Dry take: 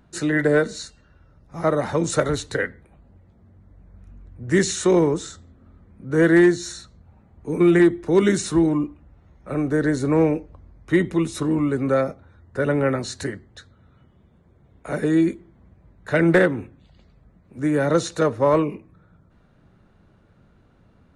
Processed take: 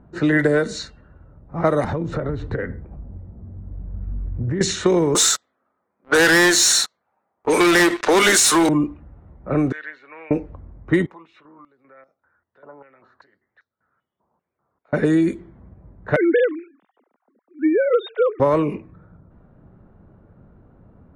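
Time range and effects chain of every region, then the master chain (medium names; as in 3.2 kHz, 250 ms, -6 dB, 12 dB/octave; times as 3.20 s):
1.84–4.61 s: tilt EQ -2.5 dB/octave + compression 16:1, threshold -26 dBFS
5.15–8.69 s: high-pass 820 Hz + treble shelf 4.5 kHz +4.5 dB + waveshaping leveller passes 5
9.72–10.31 s: resonant high-pass 2.6 kHz, resonance Q 3.2 + tape spacing loss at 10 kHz 27 dB
11.06–14.93 s: compression, threshold -29 dBFS + step-sequenced band-pass 5.1 Hz 950–5700 Hz
16.16–18.40 s: formants replaced by sine waves + high-pass 380 Hz + dynamic bell 1.5 kHz, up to -4 dB, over -37 dBFS, Q 1.5
whole clip: level-controlled noise filter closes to 1 kHz, open at -16.5 dBFS; compression, threshold -20 dBFS; trim +6.5 dB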